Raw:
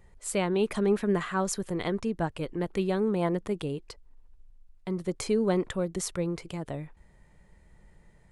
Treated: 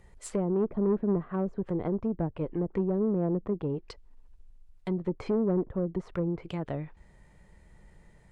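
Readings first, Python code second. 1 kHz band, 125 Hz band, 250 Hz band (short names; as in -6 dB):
-6.0 dB, +1.0 dB, +0.5 dB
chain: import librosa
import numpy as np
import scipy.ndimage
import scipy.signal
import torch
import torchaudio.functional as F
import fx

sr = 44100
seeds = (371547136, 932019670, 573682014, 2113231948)

y = fx.env_lowpass_down(x, sr, base_hz=480.0, full_db=-26.0)
y = fx.tube_stage(y, sr, drive_db=22.0, bias=0.3)
y = F.gain(torch.from_numpy(y), 2.5).numpy()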